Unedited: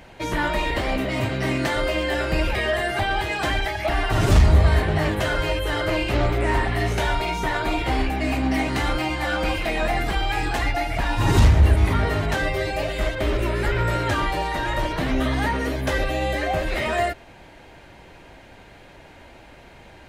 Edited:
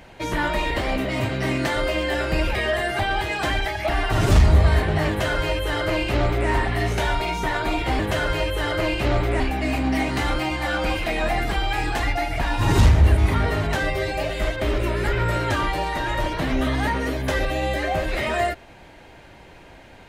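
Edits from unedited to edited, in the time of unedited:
0:05.08–0:06.49: duplicate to 0:07.99

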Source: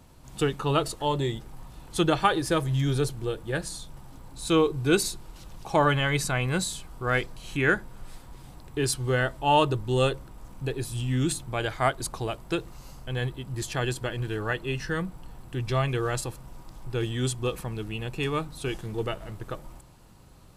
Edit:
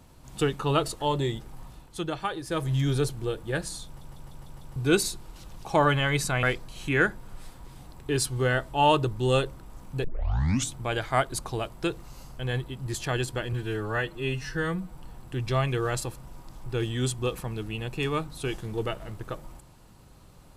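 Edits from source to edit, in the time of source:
0:01.69–0:02.69: duck −8.5 dB, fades 0.22 s
0:03.86: stutter in place 0.15 s, 6 plays
0:06.43–0:07.11: remove
0:10.72: tape start 0.70 s
0:14.21–0:15.16: time-stretch 1.5×

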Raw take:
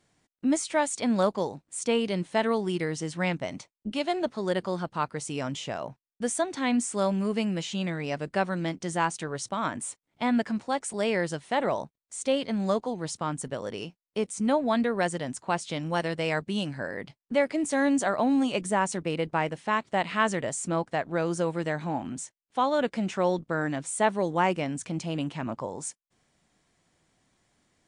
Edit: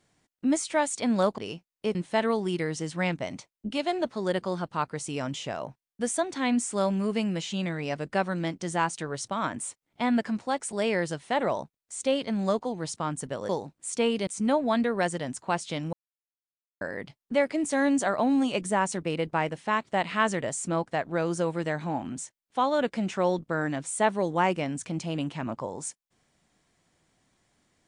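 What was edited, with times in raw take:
0:01.38–0:02.16: swap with 0:13.70–0:14.27
0:15.93–0:16.81: silence

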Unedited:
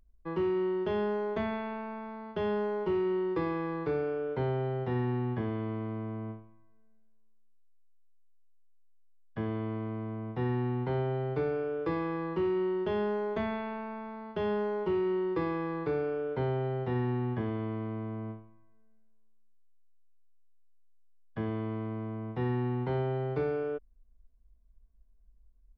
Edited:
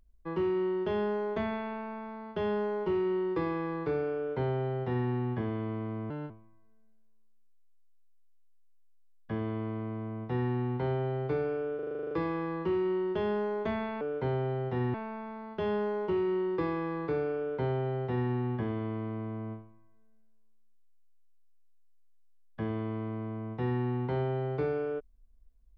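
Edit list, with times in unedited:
0:04.16–0:05.09: duplicate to 0:13.72
0:06.10–0:06.37: play speed 135%
0:11.82: stutter 0.04 s, 10 plays

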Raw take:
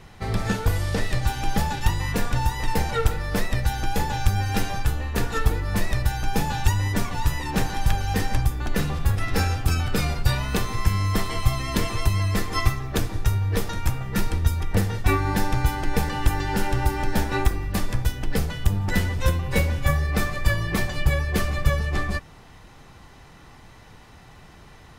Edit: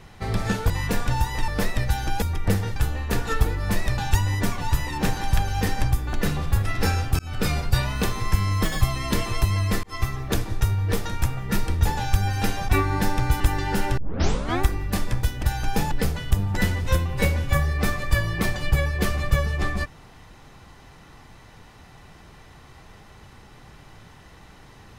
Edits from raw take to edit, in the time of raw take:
0:00.70–0:01.95: remove
0:02.73–0:03.24: remove
0:03.98–0:04.81: swap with 0:14.49–0:15.03
0:06.03–0:06.51: move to 0:18.25
0:09.72–0:09.97: fade in
0:11.18–0:11.45: play speed 165%
0:12.47–0:12.79: fade in
0:15.75–0:16.22: remove
0:16.79: tape start 0.65 s

